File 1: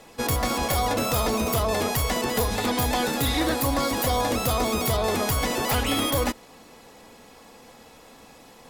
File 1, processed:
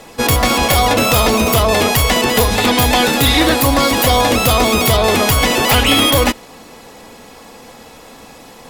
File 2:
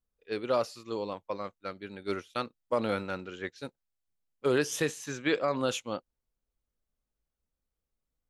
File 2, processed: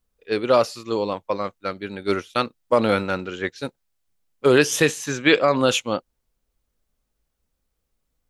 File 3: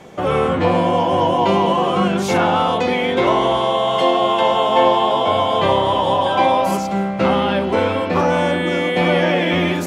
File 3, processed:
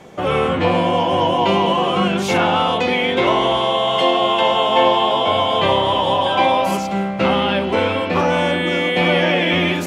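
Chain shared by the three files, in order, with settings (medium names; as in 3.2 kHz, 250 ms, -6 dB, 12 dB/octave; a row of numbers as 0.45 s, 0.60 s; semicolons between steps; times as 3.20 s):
dynamic bell 2.8 kHz, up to +6 dB, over -39 dBFS, Q 1.5; peak normalisation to -2 dBFS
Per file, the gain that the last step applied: +10.5 dB, +10.5 dB, -1.0 dB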